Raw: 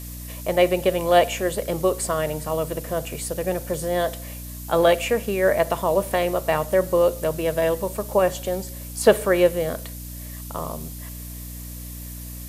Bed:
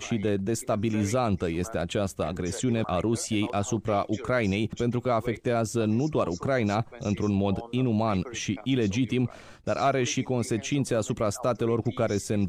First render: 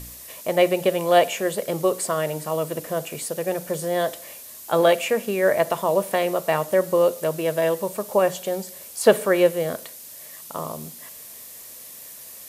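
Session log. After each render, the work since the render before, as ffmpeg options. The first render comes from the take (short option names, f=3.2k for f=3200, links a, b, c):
-af "bandreject=f=60:t=h:w=4,bandreject=f=120:t=h:w=4,bandreject=f=180:t=h:w=4,bandreject=f=240:t=h:w=4,bandreject=f=300:t=h:w=4"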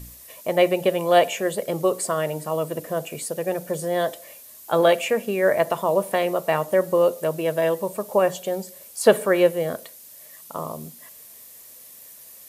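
-af "afftdn=nr=6:nf=-41"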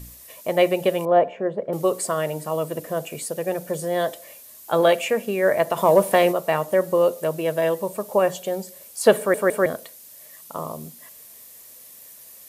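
-filter_complex "[0:a]asettb=1/sr,asplit=3[a][b][c];[a]atrim=end=1.054[d];[b]atrim=start=1.05:end=1.73,asetpts=PTS-STARTPTS,afade=t=in:d=0.004:c=qsin,afade=t=out:st=0.676:d=0.004:c=qsin,lowpass=1.1k[e];[c]atrim=start=1.726[f];[d][e]acrossfade=d=0.004:c1=hsin:c2=qsin[g];[g][f]acrossfade=d=0.004:c1=qsin:c2=hsin,asplit=3[h][i][j];[h]afade=t=out:st=5.76:d=0.02[k];[i]acontrast=47,afade=t=in:st=5.76:d=0.02,afade=t=out:st=6.31:d=0.02[l];[j]afade=t=in:st=6.31:d=0.02[m];[k][l][m]amix=inputs=3:normalize=0,asplit=4[n][o][p][q];[n]atrim=end=9.342[r];[o]atrim=start=9.178:end=9.342[s];[p]atrim=start=9.178:end=9.342[t];[q]atrim=start=9.658[u];[r][s]acrossfade=d=0.004:c1=hsin:c2=hsin[v];[v][t]acrossfade=d=0.004:c1=hsin:c2=hsin[w];[w][u]acrossfade=d=0.004:c1=hsin:c2=hsin"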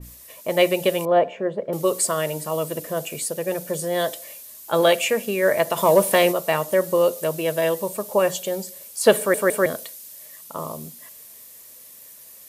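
-af "bandreject=f=740:w=14,adynamicequalizer=threshold=0.0141:dfrequency=2400:dqfactor=0.7:tfrequency=2400:tqfactor=0.7:attack=5:release=100:ratio=0.375:range=3.5:mode=boostabove:tftype=highshelf"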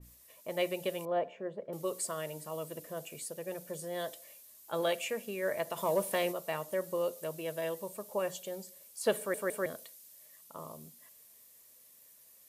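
-af "volume=-14.5dB"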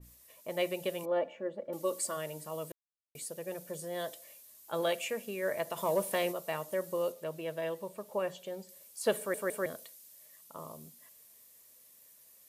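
-filter_complex "[0:a]asettb=1/sr,asplit=3[a][b][c];[a]atrim=end=1.034[d];[b]atrim=start=1.03:end=2.17,asetpts=PTS-STARTPTS,afade=t=in:d=0.004:c=qsin,afade=t=out:st=1.136:d=0.004:c=qsin,aecho=1:1:3.5:0.59,atrim=end_sample=50274[e];[c]atrim=start=2.166[f];[d][e]acrossfade=d=0.004:c1=hsin:c2=qsin[g];[g][f]acrossfade=d=0.004:c1=qsin:c2=hsin,asettb=1/sr,asplit=3[h][i][j];[h]atrim=end=7.124[k];[i]atrim=start=7.12:end=8.69,asetpts=PTS-STARTPTS,afade=t=in:d=0.004:c=qsin,afade=t=out:st=1.566:d=0.004:c=qsin,acrossover=split=4100[l][m];[m]acompressor=threshold=-57dB:ratio=4:attack=1:release=60[n];[l][n]amix=inputs=2:normalize=0[o];[j]atrim=start=8.686[p];[k][o]acrossfade=d=0.004:c1=hsin:c2=qsin[q];[q][p]acrossfade=d=0.004:c1=qsin:c2=hsin,asplit=3[r][s][t];[r]atrim=end=2.72,asetpts=PTS-STARTPTS,afade=t=out:st=2.716:d=0.004:c=hsin[u];[s]atrim=start=2.72:end=3.15,asetpts=PTS-STARTPTS,volume=0[v];[t]atrim=start=3.15,asetpts=PTS-STARTPTS,afade=t=in:d=0.004:c=hsin[w];[u][v][w]concat=n=3:v=0:a=1"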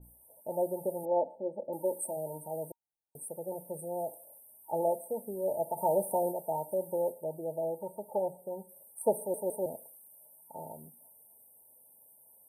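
-af "afftfilt=real='re*(1-between(b*sr/4096,930,8200))':imag='im*(1-between(b*sr/4096,930,8200))':win_size=4096:overlap=0.75,equalizer=f=980:t=o:w=0.7:g=11.5"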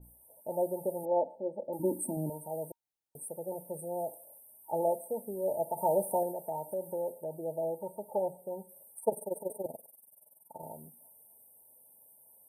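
-filter_complex "[0:a]asettb=1/sr,asplit=3[a][b][c];[a]atrim=end=1.794[d];[b]atrim=start=1.79:end=2.3,asetpts=PTS-STARTPTS,afade=t=in:d=0.004:c=qsin,afade=t=out:st=0.506:d=0.004:c=qsin,lowshelf=f=390:t=q:w=3:g=10.5[e];[c]atrim=start=2.296[f];[d][e]acrossfade=d=0.004:c1=hsin:c2=qsin[g];[g][f]acrossfade=d=0.004:c1=qsin:c2=hsin,asettb=1/sr,asplit=3[h][i][j];[h]atrim=end=6.234[k];[i]atrim=start=6.23:end=7.32,asetpts=PTS-STARTPTS,afade=t=in:d=0.004:c=qsin,afade=t=out:st=1.086:d=0.004:c=qsin,acompressor=threshold=-37dB:ratio=1.5:attack=3.2:release=140:knee=1:detection=peak[l];[j]atrim=start=7.316[m];[k][l]acrossfade=d=0.004:c1=hsin:c2=qsin[n];[n][m]acrossfade=d=0.004:c1=qsin:c2=hsin,asettb=1/sr,asplit=3[o][p][q];[o]atrim=end=8.994[r];[p]atrim=start=8.99:end=10.63,asetpts=PTS-STARTPTS,afade=t=in:d=0.004:c=qsin,afade=t=out:st=1.636:d=0.004:c=qsin,tremolo=f=21:d=0.857[s];[q]atrim=start=10.626[t];[r][s]acrossfade=d=0.004:c1=hsin:c2=qsin[u];[u][t]acrossfade=d=0.004:c1=qsin:c2=hsin"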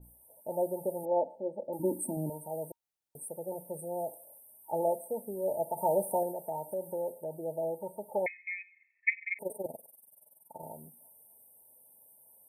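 -filter_complex "[0:a]asettb=1/sr,asplit=3[a][b][c];[a]atrim=end=8.264[d];[b]atrim=start=8.26:end=9.39,asetpts=PTS-STARTPTS,afade=t=in:d=0.004:c=qsin,afade=t=out:st=1.126:d=0.004:c=qsin,lowpass=f=2.3k:t=q:w=0.5098,lowpass=f=2.3k:t=q:w=0.6013,lowpass=f=2.3k:t=q:w=0.9,lowpass=f=2.3k:t=q:w=2.563,afreqshift=-2700[e];[c]atrim=start=9.386[f];[d][e]acrossfade=d=0.004:c1=hsin:c2=qsin[g];[g][f]acrossfade=d=0.004:c1=qsin:c2=hsin"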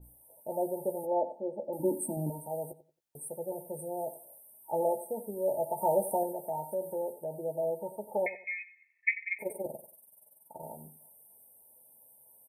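-filter_complex "[0:a]asplit=2[a][b];[b]adelay=14,volume=-8.5dB[c];[a][c]amix=inputs=2:normalize=0,asplit=2[d][e];[e]adelay=90,lowpass=f=3.2k:p=1,volume=-14dB,asplit=2[f][g];[g]adelay=90,lowpass=f=3.2k:p=1,volume=0.26,asplit=2[h][i];[i]adelay=90,lowpass=f=3.2k:p=1,volume=0.26[j];[d][f][h][j]amix=inputs=4:normalize=0"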